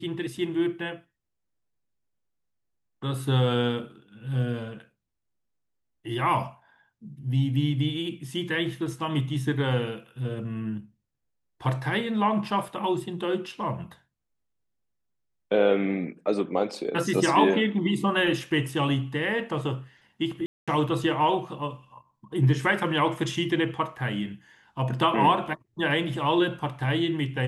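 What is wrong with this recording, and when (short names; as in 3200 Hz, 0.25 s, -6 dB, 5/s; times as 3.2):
20.46–20.68 gap 0.216 s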